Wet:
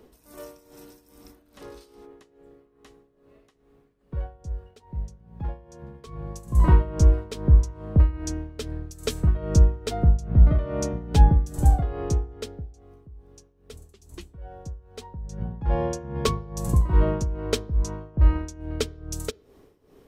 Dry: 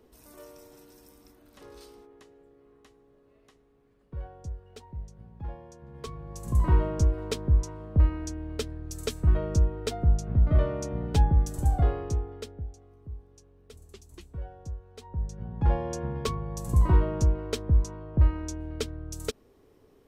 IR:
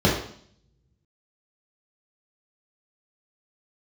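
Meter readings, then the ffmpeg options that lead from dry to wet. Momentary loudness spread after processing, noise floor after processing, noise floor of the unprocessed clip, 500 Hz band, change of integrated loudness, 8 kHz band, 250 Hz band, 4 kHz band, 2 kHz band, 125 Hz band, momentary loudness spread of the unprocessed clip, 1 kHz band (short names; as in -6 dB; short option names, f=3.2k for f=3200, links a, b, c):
20 LU, -61 dBFS, -61 dBFS, +3.0 dB, +3.5 dB, +4.0 dB, +4.0 dB, +4.0 dB, +3.0 dB, +3.5 dB, 18 LU, +3.5 dB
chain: -filter_complex "[0:a]tremolo=f=2.4:d=0.8,asplit=2[a][b];[1:a]atrim=start_sample=2205[c];[b][c]afir=irnorm=-1:irlink=0,volume=-42dB[d];[a][d]amix=inputs=2:normalize=0,volume=7dB"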